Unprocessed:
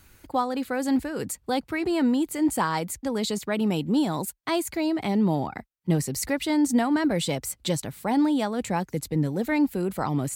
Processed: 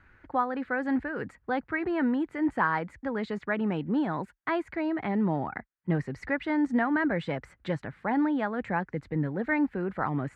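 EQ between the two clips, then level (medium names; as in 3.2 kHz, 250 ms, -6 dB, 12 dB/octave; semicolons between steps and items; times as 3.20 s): resonant low-pass 1.7 kHz, resonance Q 2.9; -4.5 dB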